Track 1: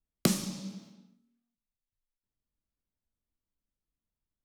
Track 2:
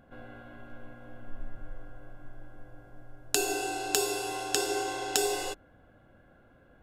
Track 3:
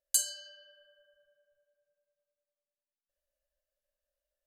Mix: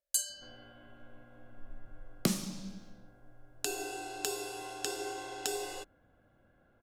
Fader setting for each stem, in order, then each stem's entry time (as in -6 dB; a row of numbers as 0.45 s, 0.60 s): -3.5 dB, -8.0 dB, -3.5 dB; 2.00 s, 0.30 s, 0.00 s